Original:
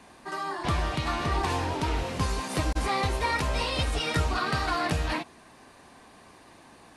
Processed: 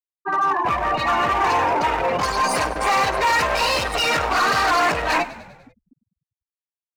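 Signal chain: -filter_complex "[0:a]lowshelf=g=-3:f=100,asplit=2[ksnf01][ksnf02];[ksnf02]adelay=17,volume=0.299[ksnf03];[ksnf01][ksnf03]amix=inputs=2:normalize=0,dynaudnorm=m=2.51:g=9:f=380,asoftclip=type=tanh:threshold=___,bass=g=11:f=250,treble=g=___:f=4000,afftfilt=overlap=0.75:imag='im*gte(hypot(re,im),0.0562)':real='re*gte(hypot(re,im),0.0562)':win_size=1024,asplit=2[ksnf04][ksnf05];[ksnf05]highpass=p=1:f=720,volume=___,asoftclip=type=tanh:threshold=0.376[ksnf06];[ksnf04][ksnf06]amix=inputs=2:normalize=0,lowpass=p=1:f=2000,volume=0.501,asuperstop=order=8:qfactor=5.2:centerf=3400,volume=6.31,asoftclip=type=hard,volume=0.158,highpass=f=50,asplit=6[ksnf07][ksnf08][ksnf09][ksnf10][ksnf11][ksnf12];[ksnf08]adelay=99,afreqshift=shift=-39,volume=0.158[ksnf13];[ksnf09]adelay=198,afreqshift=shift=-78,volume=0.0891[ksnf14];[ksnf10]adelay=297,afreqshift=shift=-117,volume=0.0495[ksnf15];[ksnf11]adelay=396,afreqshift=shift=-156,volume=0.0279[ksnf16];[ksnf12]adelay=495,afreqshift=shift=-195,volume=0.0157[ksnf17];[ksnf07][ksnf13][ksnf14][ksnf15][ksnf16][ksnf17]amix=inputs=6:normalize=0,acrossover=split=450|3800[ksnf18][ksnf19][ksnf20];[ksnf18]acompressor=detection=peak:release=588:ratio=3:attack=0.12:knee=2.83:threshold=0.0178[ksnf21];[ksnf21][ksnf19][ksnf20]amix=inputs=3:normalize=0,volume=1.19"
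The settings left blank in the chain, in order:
0.1, 7, 14.1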